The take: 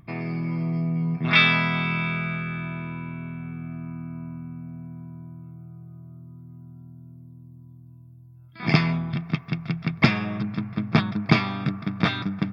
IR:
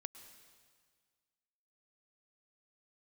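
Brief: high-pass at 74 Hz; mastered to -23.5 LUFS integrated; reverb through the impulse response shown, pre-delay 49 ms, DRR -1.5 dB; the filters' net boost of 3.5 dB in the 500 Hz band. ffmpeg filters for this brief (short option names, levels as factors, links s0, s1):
-filter_complex "[0:a]highpass=74,equalizer=f=500:t=o:g=5,asplit=2[s0][s1];[1:a]atrim=start_sample=2205,adelay=49[s2];[s1][s2]afir=irnorm=-1:irlink=0,volume=1.88[s3];[s0][s3]amix=inputs=2:normalize=0,volume=0.708"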